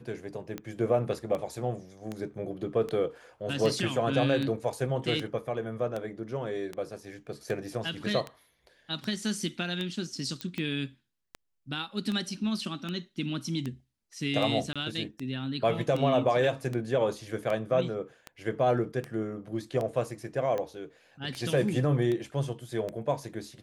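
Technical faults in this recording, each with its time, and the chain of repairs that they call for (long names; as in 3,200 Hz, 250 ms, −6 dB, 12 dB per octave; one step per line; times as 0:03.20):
scratch tick 78 rpm −21 dBFS
0:10.41: click −20 dBFS
0:14.73–0:14.76: drop-out 26 ms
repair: click removal
repair the gap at 0:14.73, 26 ms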